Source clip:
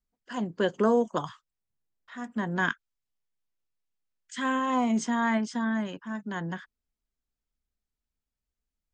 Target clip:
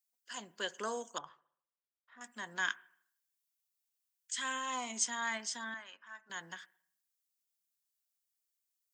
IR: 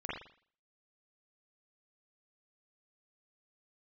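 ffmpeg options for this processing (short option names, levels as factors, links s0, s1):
-filter_complex "[0:a]asettb=1/sr,asplit=3[s0][s1][s2];[s0]atrim=end=5.744[s3];[s1]atrim=start=5.74:end=6.3,asetpts=PTS-STARTPTS,afade=t=in:d=0.004:c=qsin,afade=t=out:st=0.556:d=0.004:c=qsin,bandpass=f=1400:t=q:w=1:csg=0[s4];[s2]atrim=start=6.296[s5];[s3][s4]acrossfade=d=0.004:c1=hsin:c2=qsin[s6];[s6][s5]acrossfade=d=0.004:c1=qsin:c2=hsin,aderivative,asettb=1/sr,asplit=3[s7][s8][s9];[s7]atrim=end=1.184[s10];[s8]atrim=start=1.18:end=2.21,asetpts=PTS-STARTPTS,afade=t=in:d=0.004:c=qsin,afade=t=out:st=1.026:d=0.004:c=qsin,adynamicsmooth=sensitivity=3:basefreq=1200[s11];[s9]atrim=start=2.206[s12];[s10][s11]acrossfade=d=0.004:c1=hsin:c2=qsin[s13];[s13][s12]acrossfade=d=0.004:c1=qsin:c2=hsin,asplit=2[s14][s15];[1:a]atrim=start_sample=2205,asetrate=33957,aresample=44100[s16];[s15][s16]afir=irnorm=-1:irlink=0,volume=0.0596[s17];[s14][s17]amix=inputs=2:normalize=0,volume=2.11"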